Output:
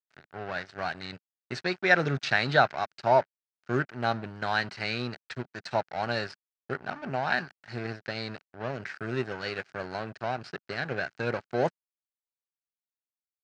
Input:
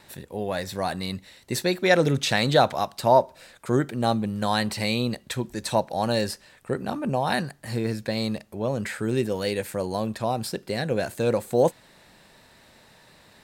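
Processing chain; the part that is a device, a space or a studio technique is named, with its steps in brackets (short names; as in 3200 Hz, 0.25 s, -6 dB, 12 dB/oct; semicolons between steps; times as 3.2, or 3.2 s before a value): blown loudspeaker (crossover distortion -33.5 dBFS; speaker cabinet 130–4800 Hz, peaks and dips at 210 Hz -9 dB, 310 Hz -7 dB, 510 Hz -9 dB, 1000 Hz -6 dB, 1500 Hz +8 dB, 3500 Hz -8 dB)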